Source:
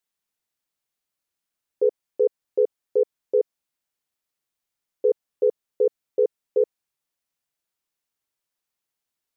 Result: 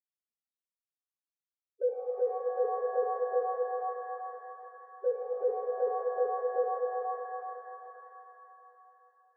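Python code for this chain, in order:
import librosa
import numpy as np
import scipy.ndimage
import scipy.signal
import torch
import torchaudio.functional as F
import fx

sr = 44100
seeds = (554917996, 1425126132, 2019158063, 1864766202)

y = fx.spec_topn(x, sr, count=1)
y = fx.env_flanger(y, sr, rest_ms=3.8, full_db=-25.5)
y = fx.rev_shimmer(y, sr, seeds[0], rt60_s=3.4, semitones=7, shimmer_db=-8, drr_db=1.0)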